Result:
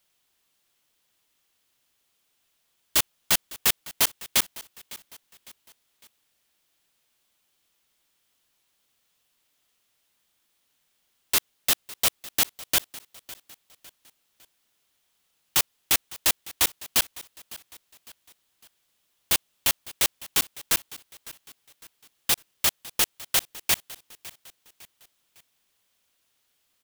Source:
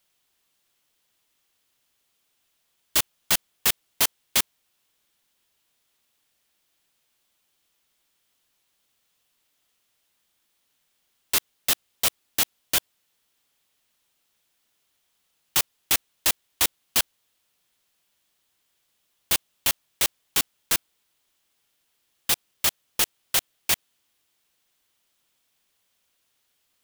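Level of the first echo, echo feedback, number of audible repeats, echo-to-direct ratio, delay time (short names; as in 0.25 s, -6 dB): -19.0 dB, 43%, 3, -18.0 dB, 0.555 s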